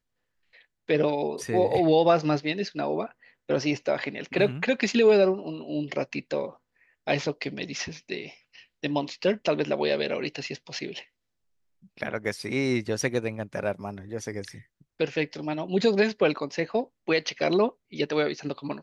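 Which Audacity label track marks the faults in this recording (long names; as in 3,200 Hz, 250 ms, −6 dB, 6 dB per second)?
13.020000	13.020000	drop-out 2.1 ms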